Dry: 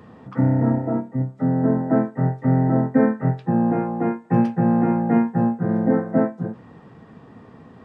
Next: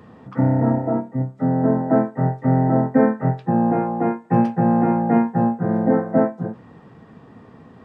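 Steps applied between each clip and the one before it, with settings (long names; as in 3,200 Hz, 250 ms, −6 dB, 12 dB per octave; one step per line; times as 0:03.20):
dynamic equaliser 750 Hz, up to +5 dB, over −36 dBFS, Q 1.1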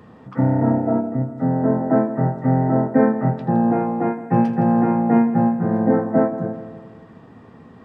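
echo machine with several playback heads 82 ms, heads first and second, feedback 58%, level −16 dB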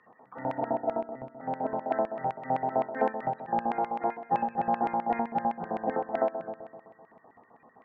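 spectral peaks only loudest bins 64
auto-filter band-pass square 7.8 Hz 790–2,300 Hz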